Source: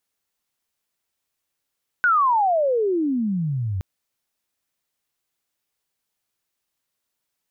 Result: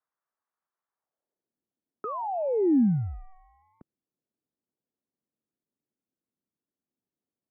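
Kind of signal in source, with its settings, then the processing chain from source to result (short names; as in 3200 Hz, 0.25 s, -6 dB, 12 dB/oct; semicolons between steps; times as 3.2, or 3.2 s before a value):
chirp logarithmic 1500 Hz -> 89 Hz -14 dBFS -> -22.5 dBFS 1.77 s
in parallel at -11 dB: decimation with a swept rate 30×, swing 60% 0.36 Hz; on the sum: band-pass sweep 1300 Hz -> 450 Hz, 0.91–1.59; mistuned SSB -200 Hz 310–2200 Hz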